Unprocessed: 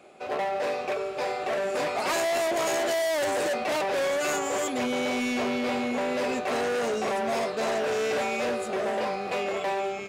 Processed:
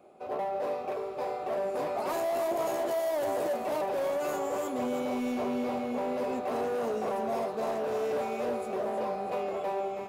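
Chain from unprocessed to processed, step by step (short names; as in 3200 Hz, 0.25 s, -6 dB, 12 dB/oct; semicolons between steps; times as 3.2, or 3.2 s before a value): band shelf 3600 Hz -10.5 dB 2.9 oct; thinning echo 0.322 s, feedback 48%, level -8 dB; gain -3.5 dB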